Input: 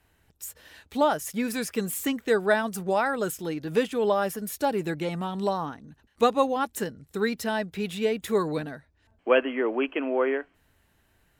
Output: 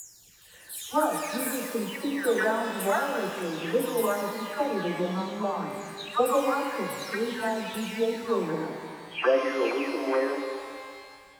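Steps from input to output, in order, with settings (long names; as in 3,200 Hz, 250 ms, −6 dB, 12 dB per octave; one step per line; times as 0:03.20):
every frequency bin delayed by itself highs early, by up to 498 ms
frequency shifter +13 Hz
reverb with rising layers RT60 2.1 s, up +12 semitones, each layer −8 dB, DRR 4 dB
level −1.5 dB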